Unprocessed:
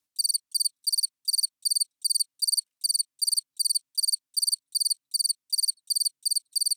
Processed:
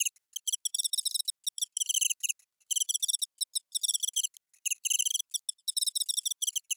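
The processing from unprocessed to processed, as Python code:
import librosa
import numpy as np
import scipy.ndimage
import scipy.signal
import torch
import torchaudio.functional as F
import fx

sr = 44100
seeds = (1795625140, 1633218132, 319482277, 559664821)

y = fx.block_reorder(x, sr, ms=93.0, group=3)
y = fx.hpss(y, sr, part='percussive', gain_db=-6)
y = fx.ring_lfo(y, sr, carrier_hz=1300.0, swing_pct=40, hz=0.43)
y = F.gain(torch.from_numpy(y), 3.5).numpy()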